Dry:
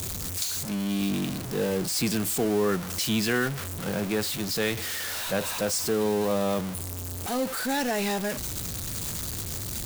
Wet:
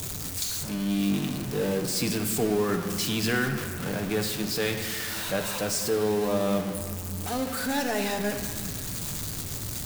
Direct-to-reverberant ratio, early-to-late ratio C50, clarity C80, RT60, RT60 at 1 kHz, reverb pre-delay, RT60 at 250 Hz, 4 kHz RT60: 4.5 dB, 7.5 dB, 8.5 dB, 2.1 s, 2.1 s, 7 ms, 3.5 s, 1.6 s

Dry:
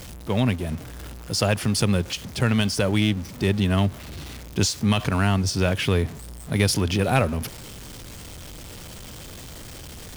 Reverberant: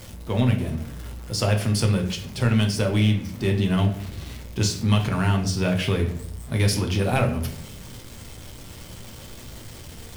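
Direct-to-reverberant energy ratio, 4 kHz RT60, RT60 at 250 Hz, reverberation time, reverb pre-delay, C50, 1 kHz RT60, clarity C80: 2.0 dB, 0.40 s, 0.75 s, 0.60 s, 8 ms, 10.0 dB, 0.50 s, 13.0 dB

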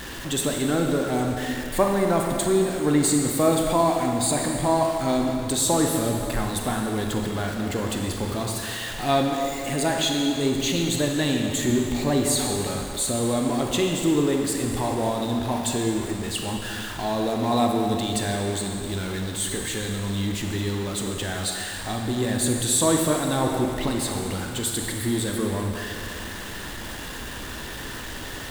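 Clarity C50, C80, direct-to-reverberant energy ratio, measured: 2.5 dB, 3.5 dB, 1.5 dB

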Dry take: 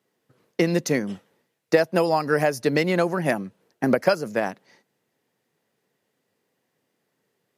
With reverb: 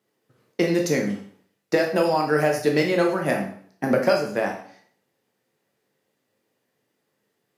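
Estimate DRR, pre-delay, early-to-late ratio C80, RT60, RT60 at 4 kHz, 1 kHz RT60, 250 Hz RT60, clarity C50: 1.5 dB, 6 ms, 10.5 dB, 0.55 s, 0.50 s, 0.55 s, 0.50 s, 6.5 dB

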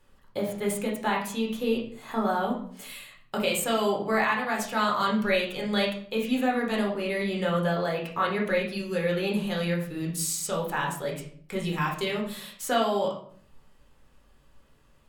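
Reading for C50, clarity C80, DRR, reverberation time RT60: 6.5 dB, 11.0 dB, -2.5 dB, 0.55 s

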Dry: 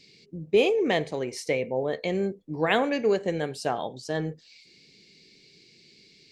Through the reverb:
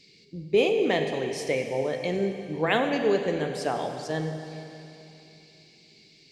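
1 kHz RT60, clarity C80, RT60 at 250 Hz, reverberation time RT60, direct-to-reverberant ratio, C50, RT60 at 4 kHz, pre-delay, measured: 2.9 s, 6.5 dB, 2.9 s, 2.9 s, 5.5 dB, 6.5 dB, 2.9 s, 32 ms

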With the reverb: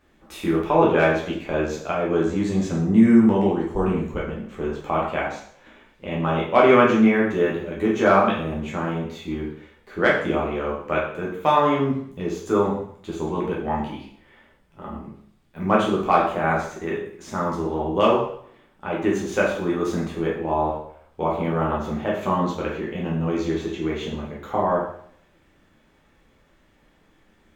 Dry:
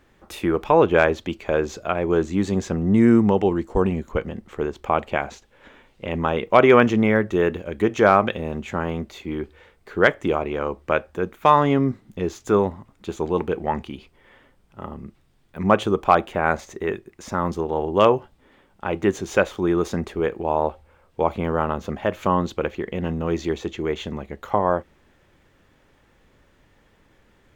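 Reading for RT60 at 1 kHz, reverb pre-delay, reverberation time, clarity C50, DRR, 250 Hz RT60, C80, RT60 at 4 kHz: 0.60 s, 5 ms, 0.60 s, 4.5 dB, -4.5 dB, 0.55 s, 7.5 dB, 0.60 s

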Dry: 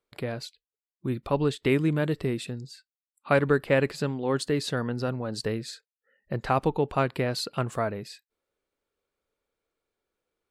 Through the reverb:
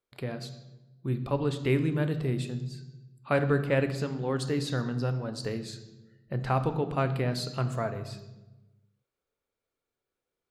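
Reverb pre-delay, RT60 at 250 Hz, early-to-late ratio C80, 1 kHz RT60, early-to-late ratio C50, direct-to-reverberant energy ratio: 3 ms, 1.4 s, 13.5 dB, 0.95 s, 12.0 dB, 8.5 dB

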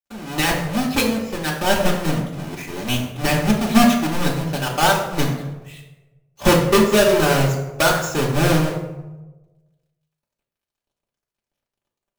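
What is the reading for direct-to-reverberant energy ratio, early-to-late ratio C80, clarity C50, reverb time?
-4.0 dB, 8.0 dB, 5.5 dB, 1.1 s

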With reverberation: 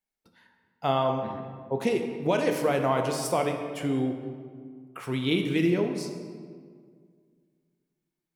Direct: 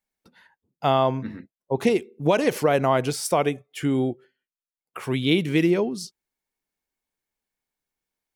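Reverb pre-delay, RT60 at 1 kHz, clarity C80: 12 ms, 1.8 s, 7.0 dB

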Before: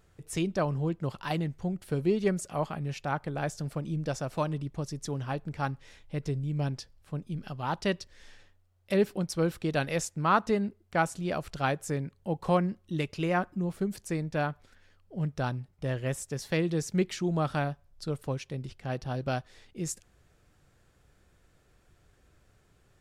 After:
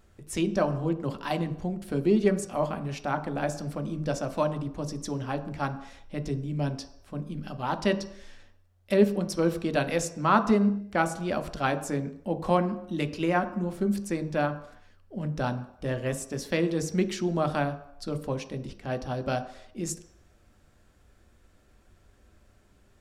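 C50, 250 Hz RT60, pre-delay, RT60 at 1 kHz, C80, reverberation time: 13.5 dB, 0.55 s, 3 ms, 0.75 s, 15.5 dB, 0.75 s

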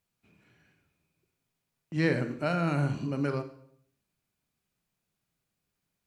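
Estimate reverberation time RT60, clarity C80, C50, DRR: 0.65 s, 15.0 dB, 11.5 dB, 9.5 dB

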